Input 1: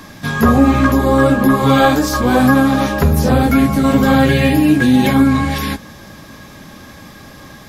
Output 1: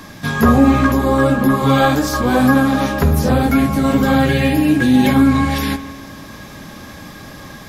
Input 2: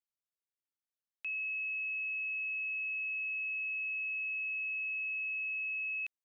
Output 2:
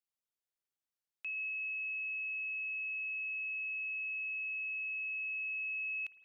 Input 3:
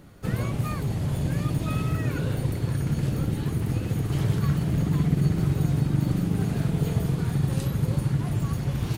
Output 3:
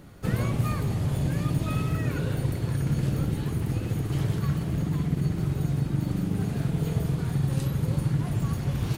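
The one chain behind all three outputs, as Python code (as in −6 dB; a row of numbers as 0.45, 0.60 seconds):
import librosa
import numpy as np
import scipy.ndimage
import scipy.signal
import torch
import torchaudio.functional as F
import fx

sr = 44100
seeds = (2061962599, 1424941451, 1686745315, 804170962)

y = fx.rider(x, sr, range_db=4, speed_s=2.0)
y = fx.rev_spring(y, sr, rt60_s=1.7, pass_ms=(51,), chirp_ms=35, drr_db=13.0)
y = y * 10.0 ** (-2.0 / 20.0)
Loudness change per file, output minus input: −1.5, −2.0, −1.5 LU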